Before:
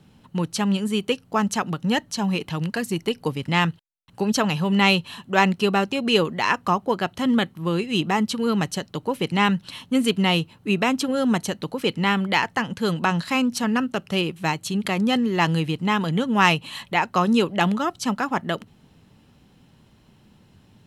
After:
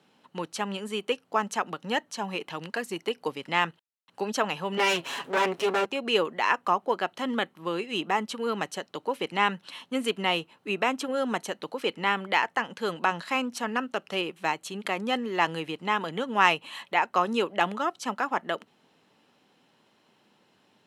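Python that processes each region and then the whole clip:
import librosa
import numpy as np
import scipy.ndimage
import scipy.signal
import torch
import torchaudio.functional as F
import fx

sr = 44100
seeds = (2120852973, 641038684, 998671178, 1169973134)

y = fx.chain(x, sr, fx.lower_of_two(delay_ms=7.2),
    fx.env_flatten(amount_pct=50), at=(4.77, 5.86))
y = fx.dynamic_eq(y, sr, hz=4500.0, q=1.5, threshold_db=-41.0, ratio=4.0, max_db=-6)
y = scipy.signal.sosfilt(scipy.signal.butter(2, 400.0, 'highpass', fs=sr, output='sos'), y)
y = fx.high_shelf(y, sr, hz=8400.0, db=-10.0)
y = F.gain(torch.from_numpy(y), -2.0).numpy()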